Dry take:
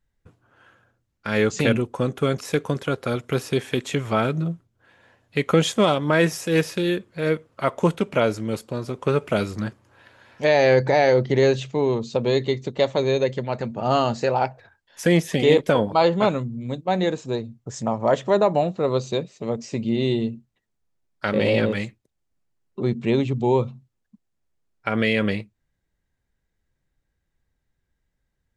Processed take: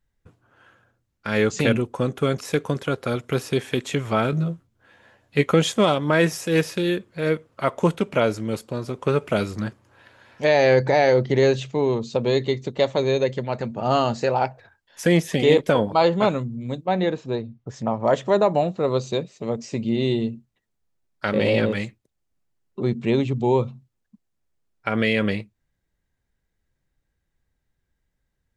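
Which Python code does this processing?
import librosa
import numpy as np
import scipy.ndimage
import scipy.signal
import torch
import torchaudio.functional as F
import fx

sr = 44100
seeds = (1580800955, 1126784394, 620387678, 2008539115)

y = fx.doubler(x, sr, ms=14.0, db=-3.0, at=(4.31, 5.46))
y = fx.lowpass(y, sr, hz=3900.0, slope=12, at=(16.86, 18.04))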